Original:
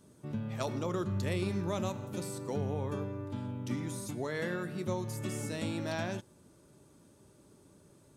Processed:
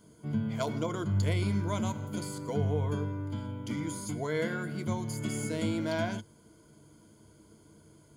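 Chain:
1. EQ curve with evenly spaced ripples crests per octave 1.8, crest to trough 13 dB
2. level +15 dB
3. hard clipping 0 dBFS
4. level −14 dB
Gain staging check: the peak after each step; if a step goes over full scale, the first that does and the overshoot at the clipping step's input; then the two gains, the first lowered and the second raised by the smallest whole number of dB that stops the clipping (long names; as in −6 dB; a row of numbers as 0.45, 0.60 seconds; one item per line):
−18.0, −3.0, −3.0, −17.0 dBFS
no step passes full scale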